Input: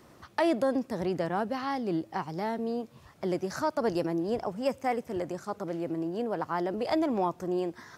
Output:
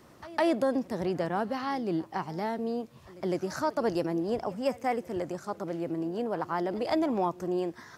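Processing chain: pre-echo 158 ms -20.5 dB

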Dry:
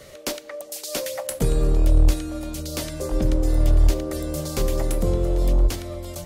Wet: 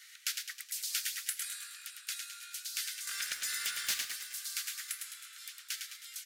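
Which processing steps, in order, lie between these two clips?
steep high-pass 1.4 kHz 72 dB/octave; 3.07–4.06 s: waveshaping leveller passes 3; on a send: frequency-shifting echo 105 ms, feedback 53%, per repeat +60 Hz, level -6 dB; on the sum: trim -4.5 dB

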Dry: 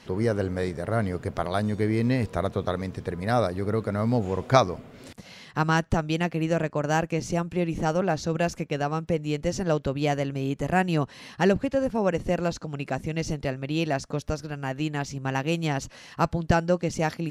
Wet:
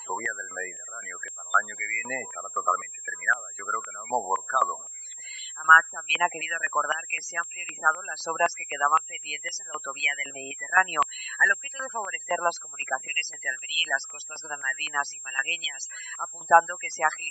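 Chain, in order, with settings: loudest bins only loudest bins 32; whistle 7.5 kHz -42 dBFS; step-sequenced high-pass 3.9 Hz 980–3200 Hz; trim +4.5 dB

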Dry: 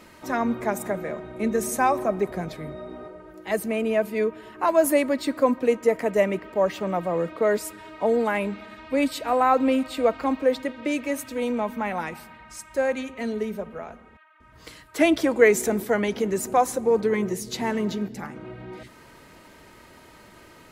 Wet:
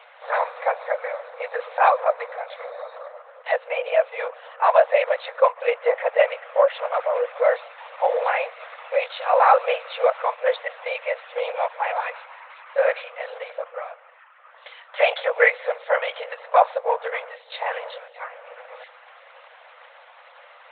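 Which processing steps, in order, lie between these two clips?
LPC vocoder at 8 kHz whisper; brick-wall FIR high-pass 470 Hz; trim +5 dB

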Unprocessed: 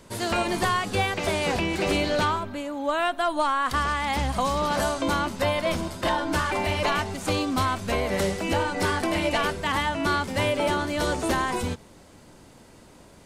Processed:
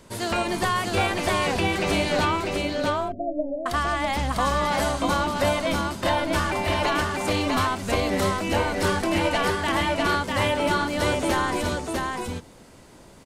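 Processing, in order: 2.47–3.66 s: steep low-pass 690 Hz 96 dB/octave; delay 649 ms -3 dB

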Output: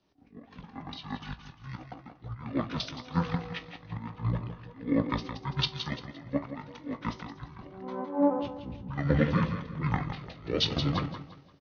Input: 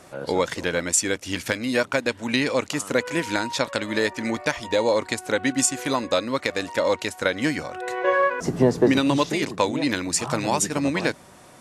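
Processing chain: on a send at -14.5 dB: reverberation RT60 0.70 s, pre-delay 3 ms; on the sum: slow attack 271 ms; feedback comb 110 Hz, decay 0.22 s, harmonics all, mix 70%; feedback delay 172 ms, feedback 50%, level -7 dB; pitch shift -11.5 st; treble shelf 6 kHz -10.5 dB; three bands expanded up and down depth 70%

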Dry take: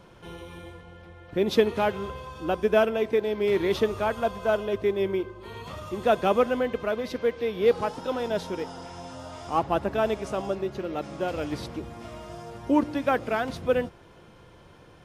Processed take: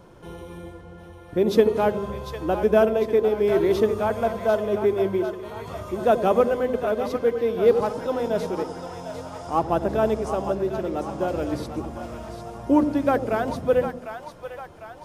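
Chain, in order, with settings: peaking EQ 2.8 kHz -8.5 dB 2 oct; hum notches 50/100/150/200/250 Hz; two-band feedback delay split 610 Hz, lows 86 ms, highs 750 ms, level -8.5 dB; trim +4 dB

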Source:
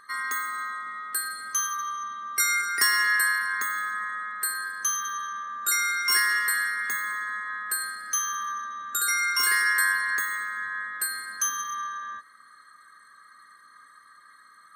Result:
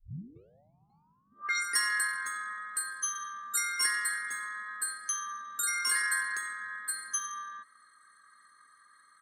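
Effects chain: tape start-up on the opening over 2.14 s; low-pass sweep 160 Hz -> 10 kHz, 2.07–2.61 s; tempo 1.6×; trim -7.5 dB

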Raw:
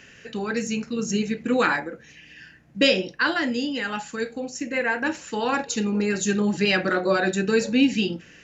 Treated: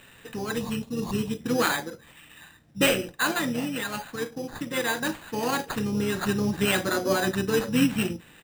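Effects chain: careless resampling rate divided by 8×, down none, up hold; time-frequency box 0.57–1.41 s, 1.2–2.4 kHz -15 dB; harmony voices -12 st -13 dB, -7 st -11 dB; trim -3.5 dB

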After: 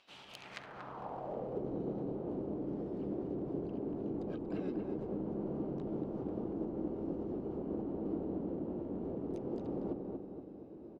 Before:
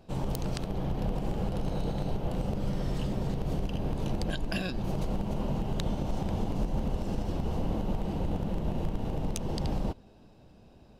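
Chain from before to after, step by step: harmony voices -4 st -6 dB, +7 st -6 dB; reverse; compression 6:1, threshold -35 dBFS, peak gain reduction 12.5 dB; reverse; hum notches 50/100/150 Hz; filtered feedback delay 235 ms, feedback 52%, low-pass 2 kHz, level -4 dB; band-pass sweep 3 kHz -> 350 Hz, 0.29–1.69 s; trim +8 dB

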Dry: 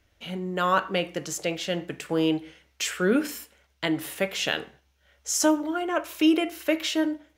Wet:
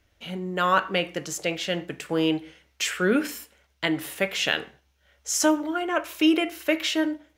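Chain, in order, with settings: dynamic bell 2.1 kHz, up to +4 dB, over -38 dBFS, Q 0.9

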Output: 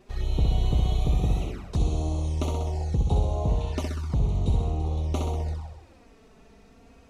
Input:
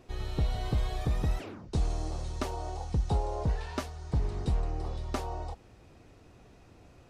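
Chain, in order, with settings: flutter echo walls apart 11 m, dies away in 1 s; touch-sensitive flanger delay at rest 5.5 ms, full sweep at -26.5 dBFS; trim +3.5 dB

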